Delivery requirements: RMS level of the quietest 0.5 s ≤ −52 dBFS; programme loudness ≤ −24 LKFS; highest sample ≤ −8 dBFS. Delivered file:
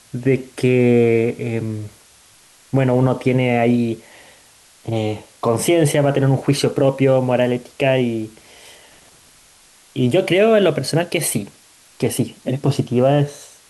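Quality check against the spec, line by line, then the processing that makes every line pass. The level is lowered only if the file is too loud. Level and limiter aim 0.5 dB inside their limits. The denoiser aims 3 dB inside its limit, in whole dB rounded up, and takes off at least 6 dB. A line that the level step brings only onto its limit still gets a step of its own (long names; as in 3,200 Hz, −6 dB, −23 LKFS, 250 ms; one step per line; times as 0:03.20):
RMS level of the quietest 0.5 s −50 dBFS: out of spec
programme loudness −18.0 LKFS: out of spec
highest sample −5.0 dBFS: out of spec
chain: level −6.5 dB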